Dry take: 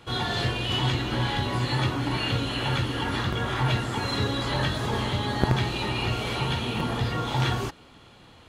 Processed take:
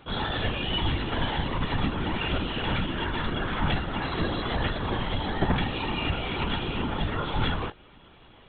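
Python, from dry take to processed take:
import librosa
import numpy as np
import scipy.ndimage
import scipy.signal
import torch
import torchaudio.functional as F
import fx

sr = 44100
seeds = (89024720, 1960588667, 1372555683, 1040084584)

y = fx.lpc_vocoder(x, sr, seeds[0], excitation='whisper', order=16)
y = y * 10.0 ** (-1.0 / 20.0)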